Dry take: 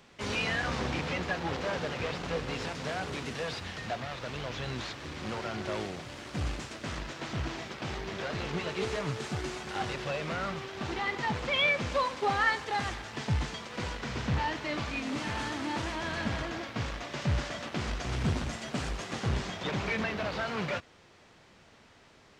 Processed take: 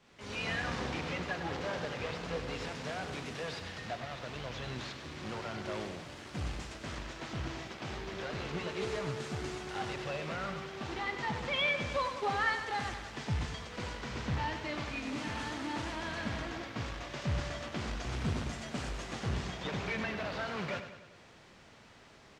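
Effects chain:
fade in at the beginning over 0.50 s
upward compression, threshold −46 dBFS
repeating echo 98 ms, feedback 55%, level −10 dB
level −4.5 dB

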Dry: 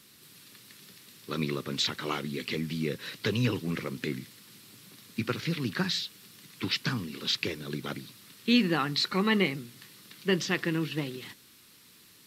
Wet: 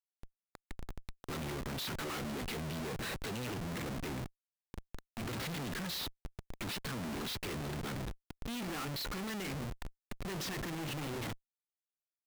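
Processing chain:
one-sided soft clipper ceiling −14.5 dBFS
comparator with hysteresis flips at −41.5 dBFS
level −6 dB

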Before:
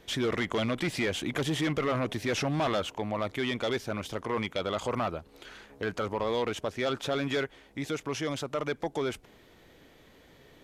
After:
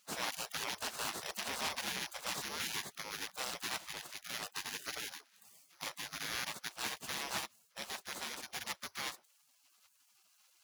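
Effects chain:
samples sorted by size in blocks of 8 samples
gate on every frequency bin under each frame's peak −25 dB weak
high-pass filter 150 Hz 12 dB per octave
spectral tilt −2 dB per octave
highs frequency-modulated by the lows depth 0.16 ms
level +7.5 dB

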